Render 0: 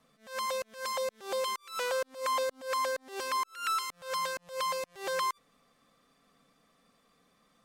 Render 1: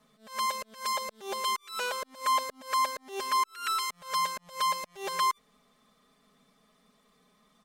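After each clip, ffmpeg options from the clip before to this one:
-af "aecho=1:1:4.8:0.77"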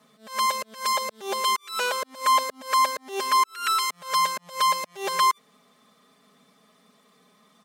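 -af "highpass=150,volume=6.5dB"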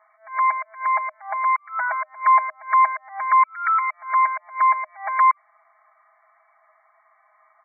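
-af "afftfilt=real='re*between(b*sr/4096,620,2300)':imag='im*between(b*sr/4096,620,2300)':win_size=4096:overlap=0.75,volume=5dB"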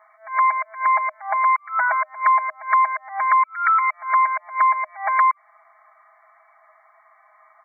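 -af "acompressor=threshold=-19dB:ratio=6,volume=5dB"

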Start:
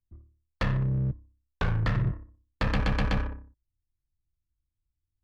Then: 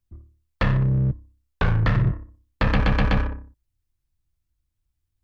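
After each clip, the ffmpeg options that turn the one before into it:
-filter_complex "[0:a]acrossover=split=4500[a][b];[b]acompressor=threshold=-57dB:ratio=4:attack=1:release=60[c];[a][c]amix=inputs=2:normalize=0,volume=6.5dB"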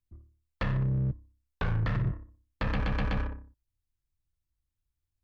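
-af "alimiter=limit=-14dB:level=0:latency=1:release=44,volume=-7.5dB"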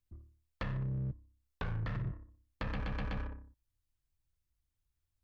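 -af "acompressor=threshold=-49dB:ratio=1.5"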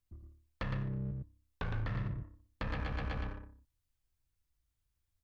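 -af "aecho=1:1:112:0.562"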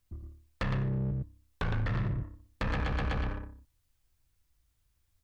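-af "asoftclip=type=tanh:threshold=-33.5dB,volume=8.5dB"

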